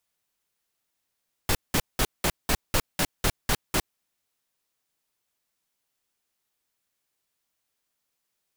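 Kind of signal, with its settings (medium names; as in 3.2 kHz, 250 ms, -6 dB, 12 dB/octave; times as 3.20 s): noise bursts pink, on 0.06 s, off 0.19 s, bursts 10, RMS -22.5 dBFS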